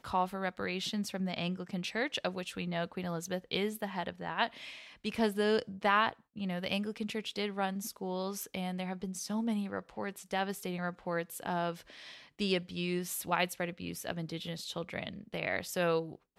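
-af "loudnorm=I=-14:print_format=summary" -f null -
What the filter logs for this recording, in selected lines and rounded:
Input Integrated:    -35.4 LUFS
Input True Peak:     -14.2 dBTP
Input LRA:             3.7 LU
Input Threshold:     -45.6 LUFS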